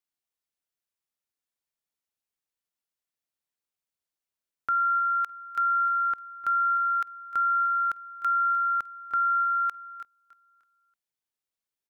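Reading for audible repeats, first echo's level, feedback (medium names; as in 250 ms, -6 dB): 3, -17.0 dB, 38%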